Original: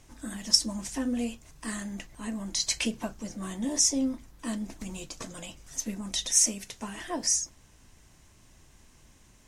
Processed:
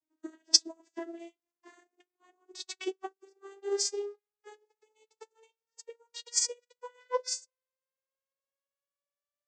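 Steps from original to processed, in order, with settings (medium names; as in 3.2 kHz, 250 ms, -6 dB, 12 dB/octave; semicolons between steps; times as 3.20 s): vocoder on a note that slides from D#4, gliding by +11 st; upward expansion 2.5:1, over -48 dBFS; trim +3.5 dB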